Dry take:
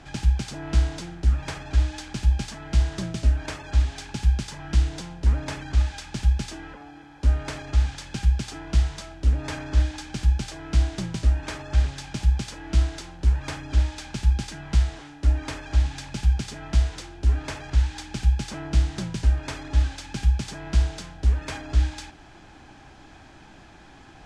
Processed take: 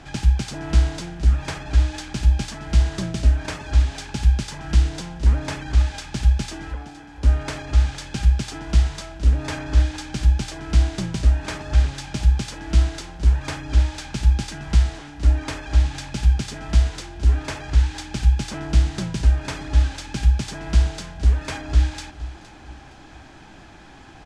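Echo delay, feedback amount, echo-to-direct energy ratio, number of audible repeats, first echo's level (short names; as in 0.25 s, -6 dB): 0.465 s, 34%, -16.0 dB, 2, -16.5 dB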